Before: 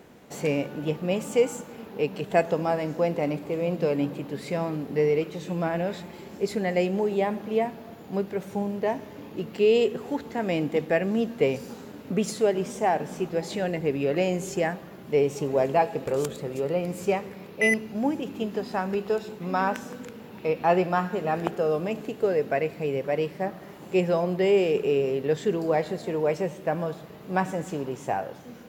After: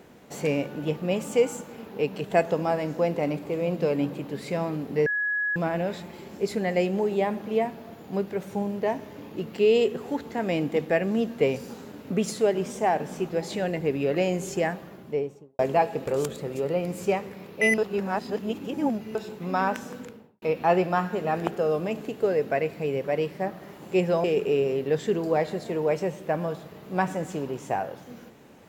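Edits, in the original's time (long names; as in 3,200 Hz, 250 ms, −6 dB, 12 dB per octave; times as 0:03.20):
0:05.06–0:05.56: beep over 1,680 Hz −23.5 dBFS
0:14.81–0:15.59: fade out and dull
0:17.78–0:19.15: reverse
0:19.98–0:20.42: fade out and dull
0:24.24–0:24.62: remove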